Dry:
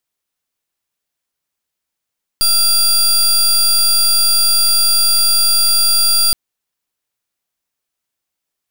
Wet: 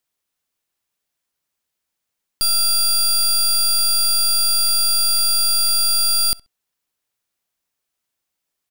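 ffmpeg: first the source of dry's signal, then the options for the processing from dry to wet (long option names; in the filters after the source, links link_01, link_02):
-f lavfi -i "aevalsrc='0.251*(2*lt(mod(4750*t,1),0.26)-1)':duration=3.92:sample_rate=44100"
-filter_complex "[0:a]alimiter=limit=-16.5dB:level=0:latency=1,asplit=2[link_01][link_02];[link_02]adelay=66,lowpass=frequency=4300:poles=1,volume=-22dB,asplit=2[link_03][link_04];[link_04]adelay=66,lowpass=frequency=4300:poles=1,volume=0.2[link_05];[link_01][link_03][link_05]amix=inputs=3:normalize=0"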